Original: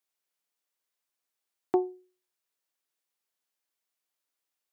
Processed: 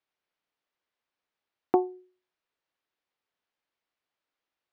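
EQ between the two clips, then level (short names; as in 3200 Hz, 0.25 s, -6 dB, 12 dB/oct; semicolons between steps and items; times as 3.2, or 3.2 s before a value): dynamic EQ 1500 Hz, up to +5 dB, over -50 dBFS, Q 1.5; dynamic EQ 400 Hz, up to -5 dB, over -34 dBFS, Q 2.4; air absorption 230 m; +5.5 dB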